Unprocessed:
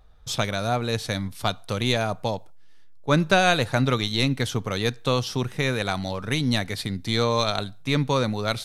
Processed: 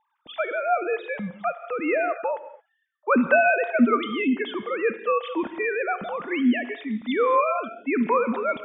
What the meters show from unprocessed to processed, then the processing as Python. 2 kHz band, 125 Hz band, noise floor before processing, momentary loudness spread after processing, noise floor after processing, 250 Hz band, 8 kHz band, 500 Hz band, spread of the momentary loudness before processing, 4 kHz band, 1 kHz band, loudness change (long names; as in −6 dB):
+2.0 dB, −20.5 dB, −42 dBFS, 10 LU, −74 dBFS, +2.0 dB, below −40 dB, +2.5 dB, 9 LU, −14.0 dB, +2.5 dB, +0.5 dB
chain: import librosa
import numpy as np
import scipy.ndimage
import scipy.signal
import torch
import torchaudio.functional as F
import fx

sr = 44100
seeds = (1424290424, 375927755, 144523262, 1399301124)

y = fx.sine_speech(x, sr)
y = fx.env_lowpass(y, sr, base_hz=1800.0, full_db=-16.0)
y = fx.rev_gated(y, sr, seeds[0], gate_ms=250, shape='flat', drr_db=10.5)